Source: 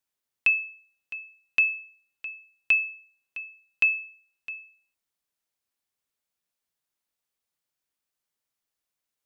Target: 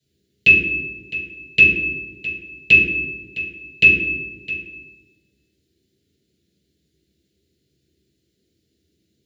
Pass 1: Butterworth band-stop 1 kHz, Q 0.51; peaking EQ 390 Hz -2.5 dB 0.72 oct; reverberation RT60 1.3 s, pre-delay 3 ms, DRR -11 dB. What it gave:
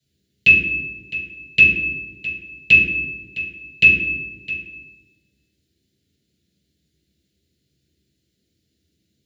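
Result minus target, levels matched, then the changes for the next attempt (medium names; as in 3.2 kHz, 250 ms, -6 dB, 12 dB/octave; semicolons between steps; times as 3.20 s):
500 Hz band -6.5 dB
change: peaking EQ 390 Hz +4.5 dB 0.72 oct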